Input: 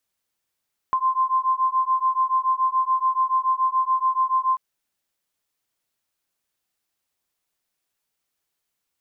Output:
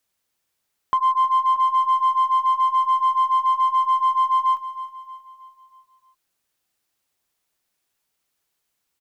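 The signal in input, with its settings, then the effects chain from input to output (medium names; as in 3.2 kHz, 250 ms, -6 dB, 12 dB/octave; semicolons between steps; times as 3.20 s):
beating tones 1.04 kHz, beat 7 Hz, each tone -21.5 dBFS 3.64 s
in parallel at -6.5 dB: one-sided clip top -22.5 dBFS, bottom -19.5 dBFS; on the sum: feedback delay 316 ms, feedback 46%, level -13 dB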